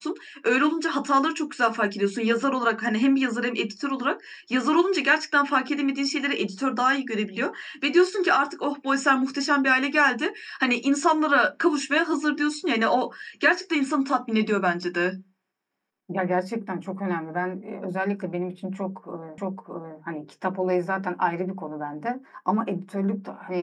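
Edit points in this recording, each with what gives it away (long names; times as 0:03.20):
0:19.38: the same again, the last 0.62 s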